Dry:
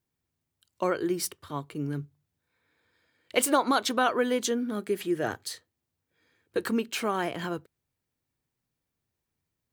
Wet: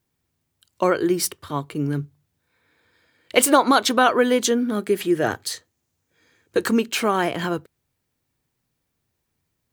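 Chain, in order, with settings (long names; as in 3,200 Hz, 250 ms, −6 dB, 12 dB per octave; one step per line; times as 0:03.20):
0:05.52–0:06.89: parametric band 6,600 Hz +7 dB 0.43 octaves
level +8 dB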